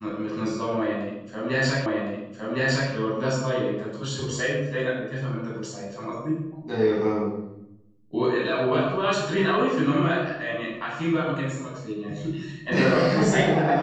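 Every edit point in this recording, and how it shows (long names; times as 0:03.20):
0:01.86: the same again, the last 1.06 s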